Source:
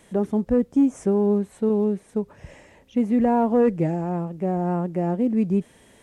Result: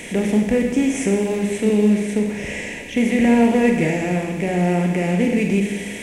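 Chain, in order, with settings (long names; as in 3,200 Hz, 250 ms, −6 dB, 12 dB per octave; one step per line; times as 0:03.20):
compressor on every frequency bin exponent 0.6
high shelf with overshoot 1,600 Hz +10.5 dB, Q 3
four-comb reverb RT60 1.2 s, combs from 30 ms, DRR 2 dB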